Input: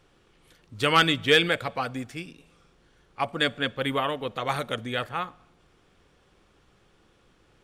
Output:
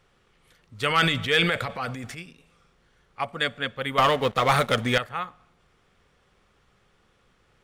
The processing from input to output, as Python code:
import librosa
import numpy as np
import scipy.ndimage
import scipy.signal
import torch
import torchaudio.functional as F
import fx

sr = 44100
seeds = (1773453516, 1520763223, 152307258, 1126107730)

y = fx.transient(x, sr, attack_db=-4, sustain_db=9, at=(0.89, 2.18))
y = fx.leveller(y, sr, passes=3, at=(3.98, 4.98))
y = fx.graphic_eq_31(y, sr, hz=(315, 1250, 2000), db=(-8, 3, 4))
y = F.gain(torch.from_numpy(y), -2.0).numpy()